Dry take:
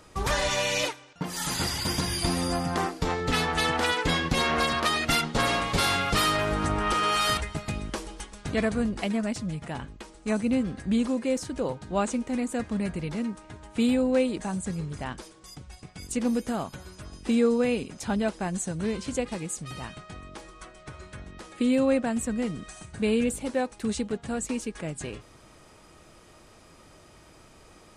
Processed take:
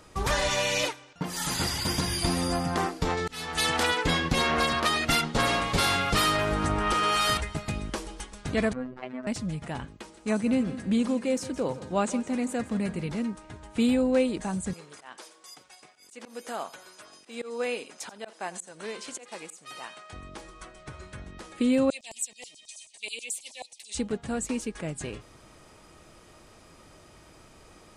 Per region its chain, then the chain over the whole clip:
0:03.17–0:03.83: high-shelf EQ 3,100 Hz +11.5 dB + volume swells 594 ms
0:08.73–0:09.27: low-pass filter 1,600 Hz + low-shelf EQ 350 Hz −9.5 dB + phases set to zero 127 Hz
0:09.85–0:13.11: high-pass filter 87 Hz + repeating echo 166 ms, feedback 43%, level −15.5 dB
0:14.73–0:20.13: high-pass filter 540 Hz + volume swells 199 ms + single-tap delay 86 ms −18.5 dB
0:21.90–0:23.95: auto-filter high-pass saw down 9.3 Hz 1,000–7,700 Hz + Butterworth band-reject 1,400 Hz, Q 0.69
whole clip: no processing

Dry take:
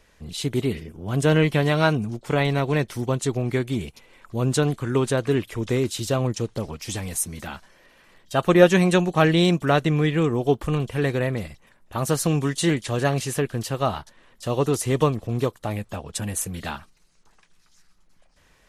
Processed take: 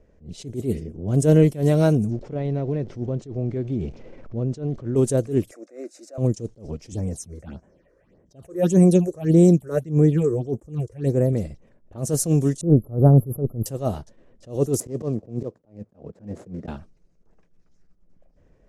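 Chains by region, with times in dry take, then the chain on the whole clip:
0:02.11–0:04.96: converter with a step at zero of −37.5 dBFS + downward compressor 5 to 1, threshold −25 dBFS + high-frequency loss of the air 150 metres
0:05.51–0:06.18: high-pass filter 420 Hz 24 dB per octave + phaser with its sweep stopped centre 640 Hz, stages 8
0:06.92–0:11.33: high-pass filter 43 Hz + all-pass phaser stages 6, 1.7 Hz, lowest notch 190–4,400 Hz
0:12.61–0:13.66: linear-phase brick-wall band-stop 1,400–11,000 Hz + low-shelf EQ 230 Hz +11.5 dB + highs frequency-modulated by the lows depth 0.27 ms
0:14.80–0:16.68: running median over 15 samples + high-pass filter 140 Hz + volume swells 111 ms
whole clip: low-pass that shuts in the quiet parts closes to 2,100 Hz, open at −18 dBFS; flat-topped bell 1,900 Hz −16 dB 2.7 octaves; level that may rise only so fast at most 190 dB per second; level +4.5 dB

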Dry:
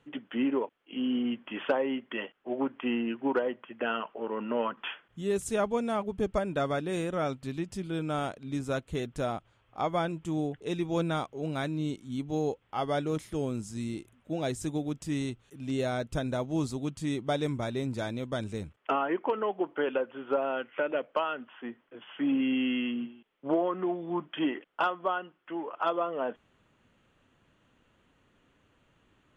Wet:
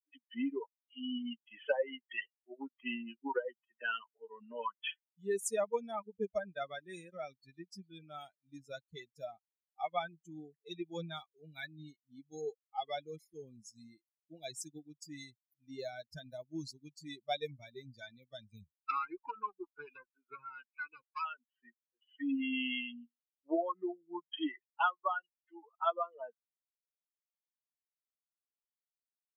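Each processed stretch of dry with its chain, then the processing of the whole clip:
0:18.49–0:21.25: tube saturation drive 26 dB, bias 0.7 + comb filter 0.8 ms, depth 93%
whole clip: spectral dynamics exaggerated over time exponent 3; high-pass filter 170 Hz; low-shelf EQ 410 Hz −11 dB; level +4.5 dB

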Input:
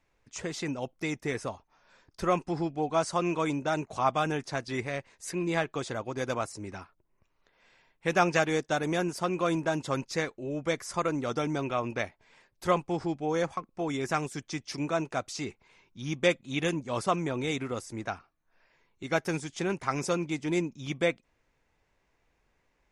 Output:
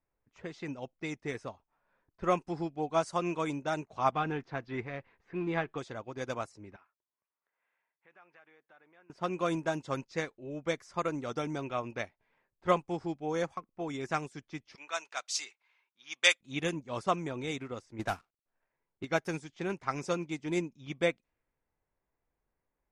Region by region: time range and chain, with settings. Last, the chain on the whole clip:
0:04.12–0:05.78: mu-law and A-law mismatch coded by mu + low-pass filter 2,700 Hz + notch filter 600 Hz, Q 7.8
0:06.76–0:09.10: downward compressor 4 to 1, threshold −40 dBFS + resonant band-pass 2,100 Hz, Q 0.73
0:14.75–0:16.41: high-pass filter 920 Hz + high-shelf EQ 2,200 Hz +12 dB
0:17.99–0:19.05: variable-slope delta modulation 64 kbit/s + leveller curve on the samples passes 2
whole clip: low-pass that shuts in the quiet parts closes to 1,500 Hz, open at −25.5 dBFS; expander for the loud parts 1.5 to 1, over −43 dBFS

